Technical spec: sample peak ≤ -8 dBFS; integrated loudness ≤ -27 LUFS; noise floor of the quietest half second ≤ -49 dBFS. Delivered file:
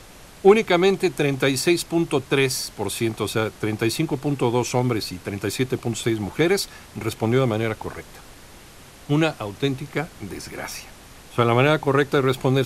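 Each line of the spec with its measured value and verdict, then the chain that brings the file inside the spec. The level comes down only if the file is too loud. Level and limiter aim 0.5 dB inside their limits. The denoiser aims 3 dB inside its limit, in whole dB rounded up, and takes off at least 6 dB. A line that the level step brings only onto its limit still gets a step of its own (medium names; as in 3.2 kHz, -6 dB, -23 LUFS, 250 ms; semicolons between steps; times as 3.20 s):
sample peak -3.0 dBFS: fail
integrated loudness -22.0 LUFS: fail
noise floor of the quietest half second -45 dBFS: fail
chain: trim -5.5 dB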